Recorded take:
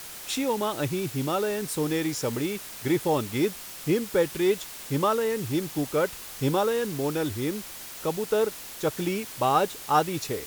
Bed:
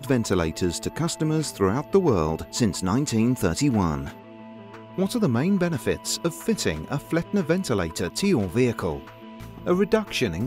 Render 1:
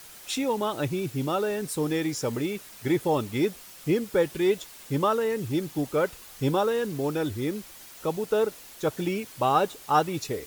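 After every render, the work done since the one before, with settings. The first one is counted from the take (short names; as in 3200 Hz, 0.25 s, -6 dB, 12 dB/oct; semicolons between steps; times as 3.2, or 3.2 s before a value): denoiser 7 dB, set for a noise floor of -41 dBFS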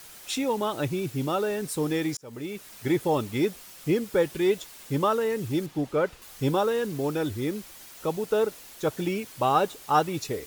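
2.17–2.72 fade in; 5.66–6.22 high shelf 6000 Hz -12 dB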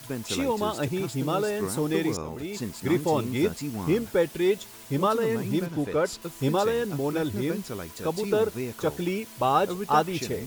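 add bed -11.5 dB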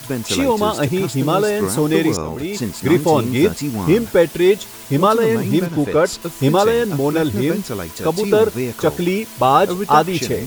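gain +10 dB; limiter -2 dBFS, peak gain reduction 2 dB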